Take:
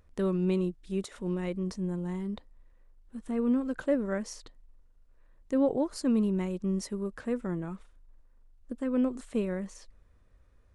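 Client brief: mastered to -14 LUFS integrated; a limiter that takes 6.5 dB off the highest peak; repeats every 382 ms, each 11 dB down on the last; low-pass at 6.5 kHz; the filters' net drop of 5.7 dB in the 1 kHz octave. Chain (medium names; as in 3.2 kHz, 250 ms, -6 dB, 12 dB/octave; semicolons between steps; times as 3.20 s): low-pass 6.5 kHz; peaking EQ 1 kHz -7.5 dB; peak limiter -24 dBFS; feedback delay 382 ms, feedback 28%, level -11 dB; trim +20 dB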